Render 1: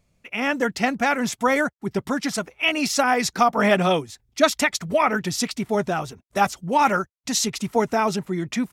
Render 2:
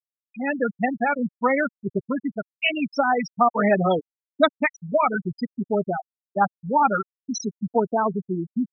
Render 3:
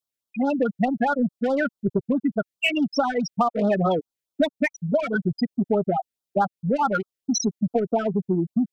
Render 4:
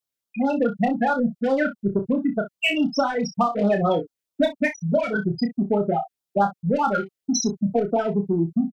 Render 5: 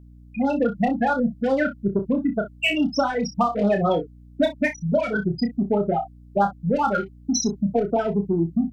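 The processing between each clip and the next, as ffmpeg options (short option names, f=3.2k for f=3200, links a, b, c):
-af "afftfilt=real='re*gte(hypot(re,im),0.282)':imag='im*gte(hypot(re,im),0.282)':win_size=1024:overlap=0.75"
-filter_complex "[0:a]asplit=2[a][b];[b]asoftclip=type=tanh:threshold=-22.5dB,volume=-3.5dB[c];[a][c]amix=inputs=2:normalize=0,acompressor=threshold=-21dB:ratio=6,afftfilt=real='re*(1-between(b*sr/1024,900*pow(2300/900,0.5+0.5*sin(2*PI*4.7*pts/sr))/1.41,900*pow(2300/900,0.5+0.5*sin(2*PI*4.7*pts/sr))*1.41))':imag='im*(1-between(b*sr/1024,900*pow(2300/900,0.5+0.5*sin(2*PI*4.7*pts/sr))/1.41,900*pow(2300/900,0.5+0.5*sin(2*PI*4.7*pts/sr))*1.41))':win_size=1024:overlap=0.75,volume=3dB"
-af "aecho=1:1:30|61:0.501|0.188"
-af "aeval=exprs='val(0)+0.00562*(sin(2*PI*60*n/s)+sin(2*PI*2*60*n/s)/2+sin(2*PI*3*60*n/s)/3+sin(2*PI*4*60*n/s)/4+sin(2*PI*5*60*n/s)/5)':c=same"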